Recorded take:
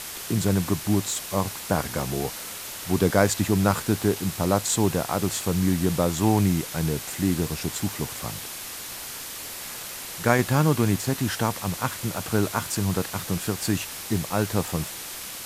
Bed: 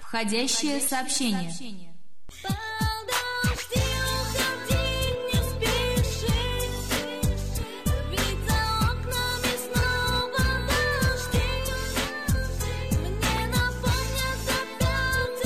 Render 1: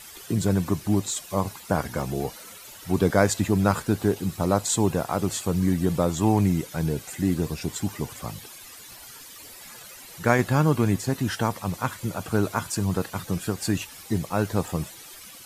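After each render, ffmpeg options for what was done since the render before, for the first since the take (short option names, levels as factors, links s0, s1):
-af "afftdn=nr=13:nf=-37"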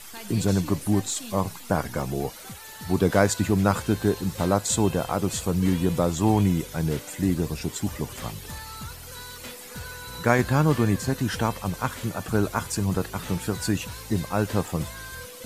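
-filter_complex "[1:a]volume=0.188[s0];[0:a][s0]amix=inputs=2:normalize=0"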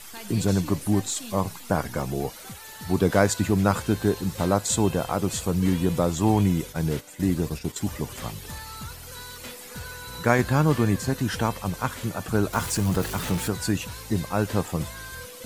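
-filter_complex "[0:a]asplit=3[s0][s1][s2];[s0]afade=t=out:st=6.71:d=0.02[s3];[s1]agate=range=0.398:threshold=0.0178:ratio=16:release=100:detection=peak,afade=t=in:st=6.71:d=0.02,afade=t=out:st=7.79:d=0.02[s4];[s2]afade=t=in:st=7.79:d=0.02[s5];[s3][s4][s5]amix=inputs=3:normalize=0,asettb=1/sr,asplit=3[s6][s7][s8];[s6]atrim=end=12.534[s9];[s7]atrim=start=12.53:end=13.48,asetpts=PTS-STARTPTS,afade=t=in:d=0.004:c=qsin,afade=t=out:st=0.946:d=0.004:c=qsin,aeval=exprs='val(0)+0.5*0.0299*sgn(val(0))':c=same[s10];[s8]atrim=start=13.476[s11];[s9][s10]acrossfade=d=0.004:c1=hsin:c2=qsin[s12];[s12][s11]acrossfade=d=0.004:c1=qsin:c2=hsin"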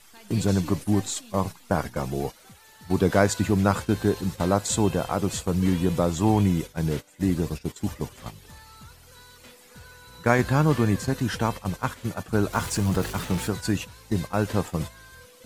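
-af "agate=range=0.355:threshold=0.0316:ratio=16:detection=peak,highshelf=f=10000:g=-6"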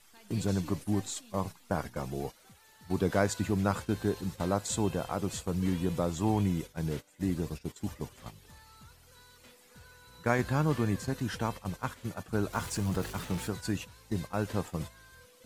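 -af "volume=0.422"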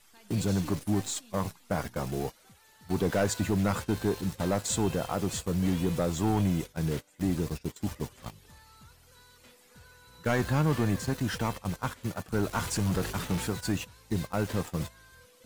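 -filter_complex "[0:a]asplit=2[s0][s1];[s1]acrusher=bits=6:mix=0:aa=0.000001,volume=0.631[s2];[s0][s2]amix=inputs=2:normalize=0,asoftclip=type=tanh:threshold=0.119"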